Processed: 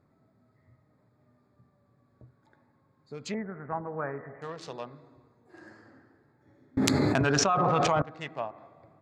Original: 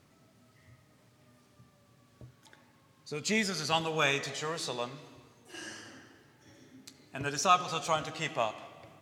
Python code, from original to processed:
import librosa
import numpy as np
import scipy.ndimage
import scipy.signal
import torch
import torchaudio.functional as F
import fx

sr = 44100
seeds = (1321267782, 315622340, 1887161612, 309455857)

y = fx.wiener(x, sr, points=15)
y = fx.steep_lowpass(y, sr, hz=2000.0, slope=72, at=(3.34, 4.42))
y = fx.env_lowpass_down(y, sr, base_hz=1400.0, full_db=-27.0)
y = fx.env_flatten(y, sr, amount_pct=100, at=(6.77, 8.02))
y = F.gain(torch.from_numpy(y), -2.5).numpy()